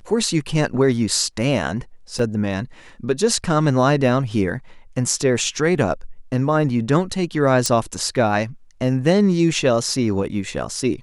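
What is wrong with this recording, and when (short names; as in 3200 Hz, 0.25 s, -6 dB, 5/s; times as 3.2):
2.19 gap 2.6 ms
7.66 pop -6 dBFS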